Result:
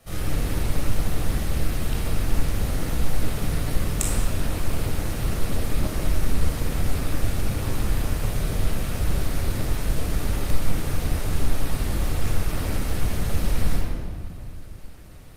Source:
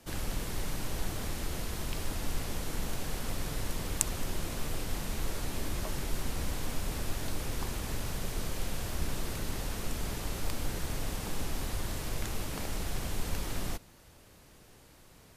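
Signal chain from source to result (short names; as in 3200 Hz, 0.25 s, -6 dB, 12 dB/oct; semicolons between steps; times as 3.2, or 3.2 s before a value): reverb RT60 1.9 s, pre-delay 21 ms, DRR -5 dB; Opus 32 kbps 48000 Hz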